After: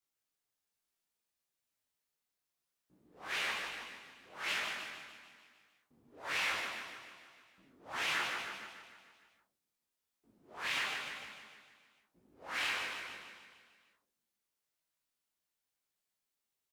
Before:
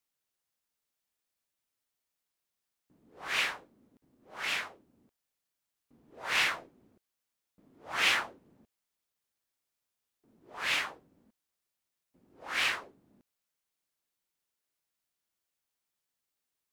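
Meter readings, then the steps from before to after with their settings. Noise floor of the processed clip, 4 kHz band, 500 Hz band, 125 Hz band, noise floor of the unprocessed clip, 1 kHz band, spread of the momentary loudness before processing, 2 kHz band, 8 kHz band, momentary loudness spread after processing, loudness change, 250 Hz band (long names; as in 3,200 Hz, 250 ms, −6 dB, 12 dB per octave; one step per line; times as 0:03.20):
below −85 dBFS, −5.0 dB, −3.0 dB, −3.5 dB, below −85 dBFS, −3.5 dB, 18 LU, −4.5 dB, −4.5 dB, 20 LU, −6.5 dB, −3.0 dB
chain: brickwall limiter −22 dBFS, peak gain reduction 9 dB
double-tracking delay 37 ms −11 dB
on a send: repeating echo 150 ms, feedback 58%, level −5 dB
on the sum: micro pitch shift up and down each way 37 cents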